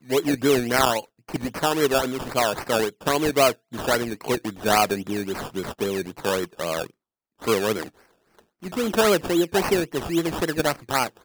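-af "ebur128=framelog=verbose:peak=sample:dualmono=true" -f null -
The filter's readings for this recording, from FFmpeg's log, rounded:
Integrated loudness:
  I:         -20.6 LUFS
  Threshold: -30.9 LUFS
Loudness range:
  LRA:         5.1 LU
  Threshold: -41.4 LUFS
  LRA low:   -24.9 LUFS
  LRA high:  -19.8 LUFS
Sample peak:
  Peak:       -5.2 dBFS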